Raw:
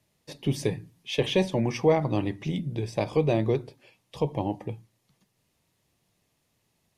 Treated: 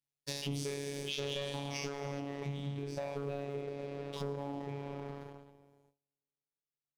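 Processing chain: spectral trails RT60 2.81 s; reverb removal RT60 1.4 s; gate with hold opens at -52 dBFS; high shelf 2700 Hz +7.5 dB, from 2.2 s -5.5 dB; sample leveller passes 2; compressor 10:1, threshold -36 dBFS, peak gain reduction 23.5 dB; sample leveller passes 1; robotiser 141 Hz; Doppler distortion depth 0.13 ms; gain -2 dB

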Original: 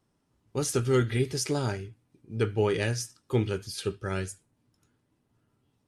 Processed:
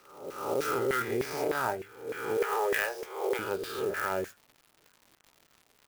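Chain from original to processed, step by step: spectral swells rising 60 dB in 1.16 s; 2.37–3.39 steep high-pass 370 Hz 72 dB/oct; LFO band-pass saw down 3.3 Hz 470–2000 Hz; in parallel at +1.5 dB: negative-ratio compressor -37 dBFS, ratio -1; on the sum: crackle 260/s -45 dBFS; clock jitter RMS 0.027 ms

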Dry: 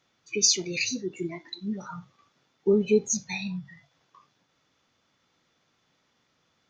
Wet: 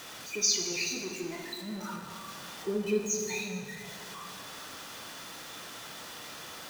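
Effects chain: zero-crossing step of -33 dBFS; low shelf 260 Hz -9 dB; notch 2200 Hz, Q 17; plate-style reverb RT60 2.5 s, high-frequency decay 0.65×, pre-delay 0 ms, DRR 1.5 dB; gain -6.5 dB

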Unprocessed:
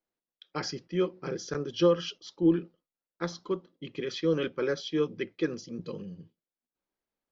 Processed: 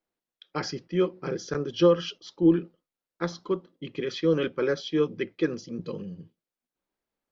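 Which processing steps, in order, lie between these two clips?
high shelf 5000 Hz -6 dB; gain +3.5 dB

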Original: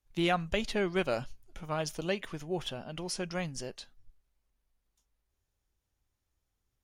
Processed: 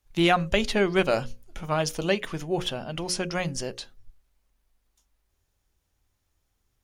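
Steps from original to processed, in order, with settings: notches 60/120/180/240/300/360/420/480/540 Hz; gain +8 dB

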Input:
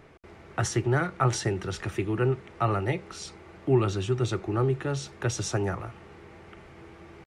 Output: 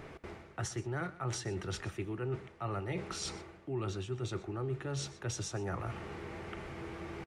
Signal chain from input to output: reverse; compressor 5:1, threshold -41 dBFS, peak gain reduction 21 dB; reverse; echo 0.123 s -17.5 dB; gain +4.5 dB

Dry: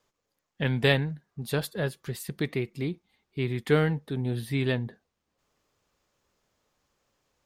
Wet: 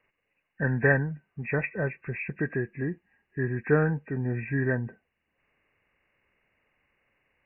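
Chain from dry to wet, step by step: nonlinear frequency compression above 1500 Hz 4:1

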